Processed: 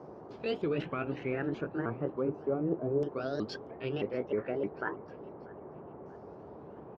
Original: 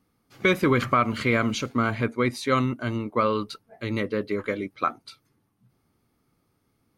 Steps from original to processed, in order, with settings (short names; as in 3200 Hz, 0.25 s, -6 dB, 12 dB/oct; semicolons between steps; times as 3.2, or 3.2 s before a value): repeated pitch sweeps +6 st, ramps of 0.309 s; dynamic EQ 1900 Hz, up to -8 dB, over -39 dBFS, Q 0.91; reverse; compressor 6:1, threshold -35 dBFS, peak gain reduction 16 dB; reverse; LFO low-pass saw down 0.33 Hz 520–5600 Hz; band noise 66–940 Hz -51 dBFS; fifteen-band EQ 160 Hz +5 dB, 400 Hz +10 dB, 4000 Hz -4 dB, 10000 Hz -4 dB; on a send: feedback echo 0.637 s, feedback 46%, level -23 dB; on the sum: gain -1.5 dB